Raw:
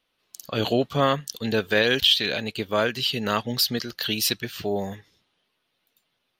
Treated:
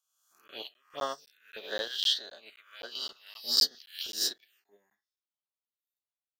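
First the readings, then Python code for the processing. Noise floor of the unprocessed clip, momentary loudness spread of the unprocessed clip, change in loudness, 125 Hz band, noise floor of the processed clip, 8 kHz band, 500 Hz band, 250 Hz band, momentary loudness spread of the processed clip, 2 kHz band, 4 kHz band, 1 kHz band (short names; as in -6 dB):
-75 dBFS, 10 LU, -7.0 dB, under -35 dB, under -85 dBFS, -5.0 dB, -17.5 dB, -26.5 dB, 22 LU, -17.0 dB, -6.5 dB, -14.5 dB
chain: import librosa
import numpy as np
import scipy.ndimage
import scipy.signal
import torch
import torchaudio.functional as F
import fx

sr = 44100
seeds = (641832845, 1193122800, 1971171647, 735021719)

y = fx.spec_swells(x, sr, rise_s=1.07)
y = fx.low_shelf(y, sr, hz=440.0, db=-9.5)
y = fx.notch(y, sr, hz=480.0, q=12.0)
y = fx.filter_lfo_highpass(y, sr, shape='square', hz=1.6, low_hz=400.0, high_hz=1600.0, q=0.75)
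y = fx.high_shelf(y, sr, hz=3900.0, db=-2.0)
y = fx.doubler(y, sr, ms=34.0, db=-12.5)
y = fx.env_phaser(y, sr, low_hz=340.0, high_hz=2400.0, full_db=-20.5)
y = fx.buffer_crackle(y, sr, first_s=0.48, period_s=0.26, block=512, kind='zero')
y = fx.upward_expand(y, sr, threshold_db=-39.0, expansion=2.5)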